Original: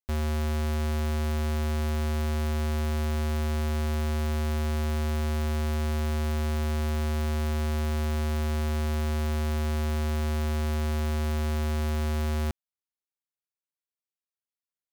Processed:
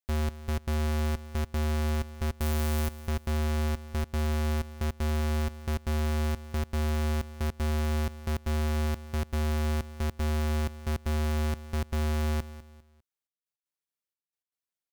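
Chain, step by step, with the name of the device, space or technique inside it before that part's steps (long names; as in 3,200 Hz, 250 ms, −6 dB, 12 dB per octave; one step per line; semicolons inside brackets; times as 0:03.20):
0:02.39–0:02.99: high-shelf EQ 8,200 Hz +11.5 dB
trance gate with a delay (gate pattern "xxx..x.xx" 156 BPM −60 dB; repeating echo 200 ms, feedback 34%, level −15.5 dB)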